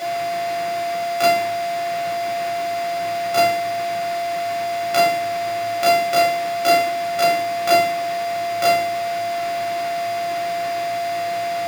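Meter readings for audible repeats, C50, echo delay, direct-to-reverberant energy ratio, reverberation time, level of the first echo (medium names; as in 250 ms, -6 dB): no echo, 10.5 dB, no echo, -3.5 dB, 0.50 s, no echo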